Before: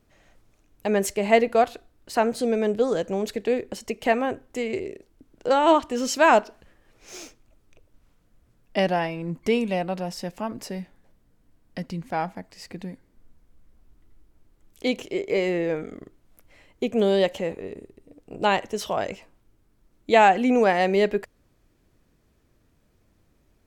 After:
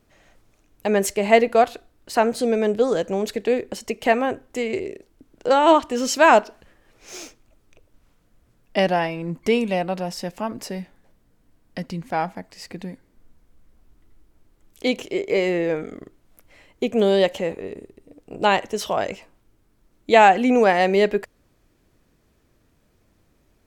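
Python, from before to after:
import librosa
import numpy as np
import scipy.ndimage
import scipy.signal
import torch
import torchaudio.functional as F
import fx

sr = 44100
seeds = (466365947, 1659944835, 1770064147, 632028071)

y = fx.low_shelf(x, sr, hz=210.0, db=-3.0)
y = F.gain(torch.from_numpy(y), 3.5).numpy()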